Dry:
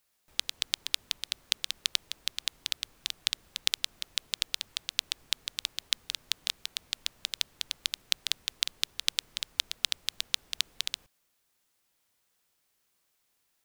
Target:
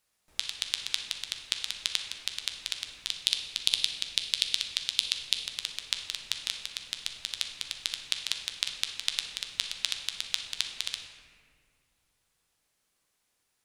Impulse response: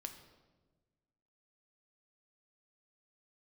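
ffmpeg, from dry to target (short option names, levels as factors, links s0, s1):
-filter_complex "[0:a]asettb=1/sr,asplit=3[s0][s1][s2];[s0]atrim=end=3.104[s3];[s1]atrim=start=3.1:end=5.36,asetpts=PTS-STARTPTS,afade=t=in:d=0.004:c=qsin,afade=t=out:st=2.256:d=0.004:c=qsin,equalizer=f=4100:t=o:w=1.9:g=6[s4];[s2]atrim=start=5.356[s5];[s3][s4]acrossfade=d=0.004:c1=hsin:c2=qsin[s6];[s6][s5]acrossfade=d=0.004:c1=qsin:c2=hsin,volume=1.5,asoftclip=hard,volume=0.668[s7];[1:a]atrim=start_sample=2205,asetrate=22050,aresample=44100[s8];[s7][s8]afir=irnorm=-1:irlink=0"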